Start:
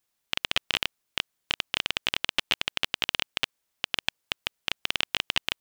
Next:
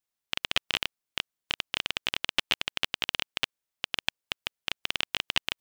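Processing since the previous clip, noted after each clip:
expander for the loud parts 1.5 to 1, over −42 dBFS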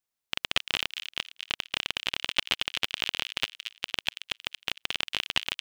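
delay with a high-pass on its return 229 ms, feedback 37%, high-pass 2,200 Hz, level −7 dB

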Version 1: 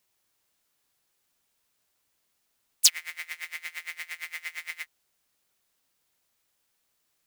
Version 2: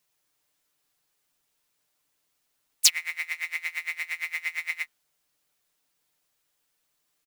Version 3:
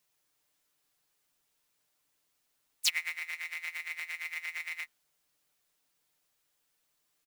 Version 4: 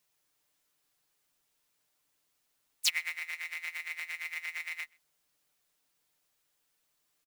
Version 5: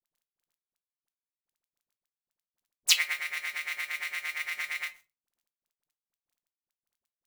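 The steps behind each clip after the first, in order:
mains-hum notches 60/120/180/240 Hz; comb filter 6.7 ms, depth 54%; dynamic equaliser 1,900 Hz, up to +7 dB, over −45 dBFS, Q 1.2; level −1.5 dB
transient designer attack −12 dB, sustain 0 dB; level −1.5 dB
slap from a distant wall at 22 metres, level −28 dB
bit reduction 11 bits; all-pass dispersion highs, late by 41 ms, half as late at 750 Hz; convolution reverb RT60 0.25 s, pre-delay 6 ms, DRR 7.5 dB; level +6 dB

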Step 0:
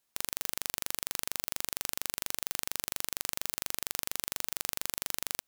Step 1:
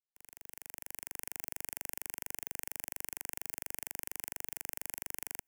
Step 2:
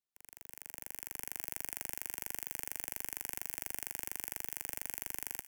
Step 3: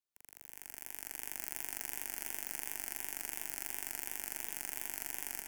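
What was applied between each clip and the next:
fade in at the beginning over 1.43 s; phaser with its sweep stopped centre 800 Hz, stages 8; level −4 dB
feedback echo with a high-pass in the loop 180 ms, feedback 62%, high-pass 1,100 Hz, level −15 dB
feedback echo with a swinging delay time 147 ms, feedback 73%, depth 126 cents, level −4.5 dB; level −1.5 dB

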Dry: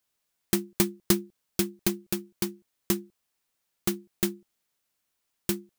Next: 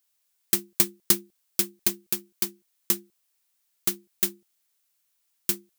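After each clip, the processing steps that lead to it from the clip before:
spectral tilt +2.5 dB per octave
level −2.5 dB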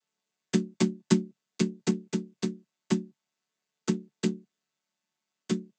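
channel vocoder with a chord as carrier major triad, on D3
level +6.5 dB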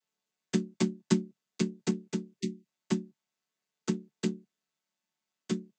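time-frequency box erased 0:02.41–0:02.65, 400–1,800 Hz
level −3 dB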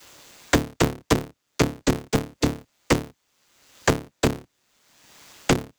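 sub-harmonics by changed cycles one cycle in 3, inverted
multiband upward and downward compressor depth 100%
level +9 dB

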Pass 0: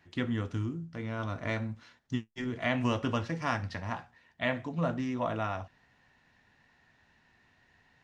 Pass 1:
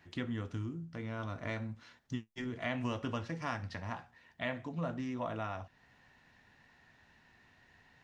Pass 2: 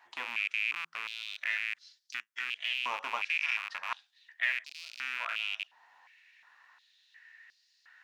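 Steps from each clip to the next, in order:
downward compressor 1.5 to 1, threshold −49 dBFS, peak gain reduction 9 dB; level +1.5 dB
loose part that buzzes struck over −43 dBFS, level −27 dBFS; high-pass on a step sequencer 2.8 Hz 910–4,700 Hz

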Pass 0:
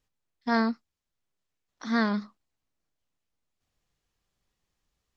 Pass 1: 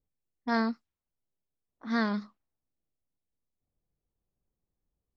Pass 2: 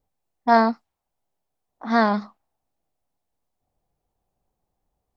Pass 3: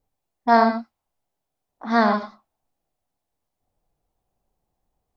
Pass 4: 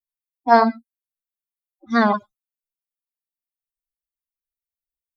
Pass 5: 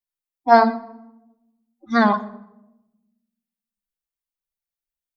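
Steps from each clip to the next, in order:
low-pass that shuts in the quiet parts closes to 580 Hz, open at −27 dBFS; level −3 dB
parametric band 780 Hz +13.5 dB 0.9 octaves; level +6 dB
reverb whose tail is shaped and stops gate 120 ms rising, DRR 6.5 dB
spectral dynamics exaggerated over time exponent 3; level +5.5 dB
rectangular room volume 3,500 cubic metres, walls furnished, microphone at 0.84 metres

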